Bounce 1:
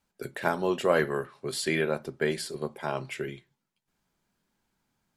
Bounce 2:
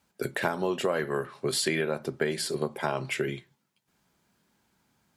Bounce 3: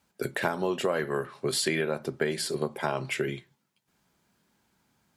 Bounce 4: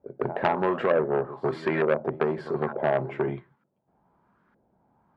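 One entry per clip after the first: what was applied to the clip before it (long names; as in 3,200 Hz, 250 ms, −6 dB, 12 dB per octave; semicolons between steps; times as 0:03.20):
high-pass filter 60 Hz; downward compressor 8 to 1, threshold −31 dBFS, peak gain reduction 13.5 dB; level +7 dB
no processing that can be heard
backwards echo 154 ms −16 dB; auto-filter low-pass saw up 1.1 Hz 540–1,500 Hz; saturating transformer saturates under 1,300 Hz; level +3.5 dB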